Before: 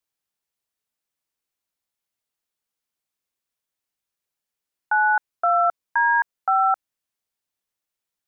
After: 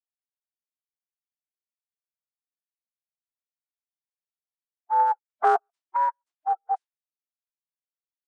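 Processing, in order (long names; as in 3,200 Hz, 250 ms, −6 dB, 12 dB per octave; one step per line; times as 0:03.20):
noise gate with hold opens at −17 dBFS
high-pass filter 520 Hz 24 dB per octave
low-pass that shuts in the quiet parts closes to 970 Hz, open at −17 dBFS
gate pattern "xxx..xxx..x" 170 BPM −60 dB
phase shifter 0.6 Hz, delay 4 ms, feedback 20%
phase-vocoder pitch shift with formants kept −9 semitones
downsampling to 22,050 Hz
level +2 dB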